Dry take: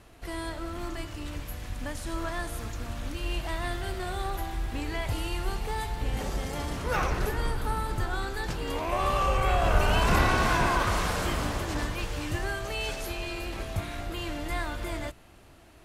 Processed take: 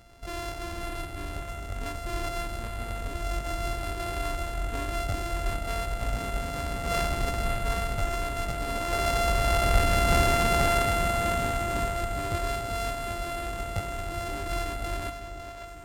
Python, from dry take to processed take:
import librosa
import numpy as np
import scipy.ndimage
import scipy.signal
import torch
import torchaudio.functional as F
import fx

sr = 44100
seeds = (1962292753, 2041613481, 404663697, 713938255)

y = np.r_[np.sort(x[:len(x) // 64 * 64].reshape(-1, 64), axis=1).ravel(), x[len(x) // 64 * 64:]]
y = fx.echo_split(y, sr, split_hz=490.0, low_ms=399, high_ms=553, feedback_pct=52, wet_db=-9.0)
y = np.interp(np.arange(len(y)), np.arange(len(y))[::2], y[::2])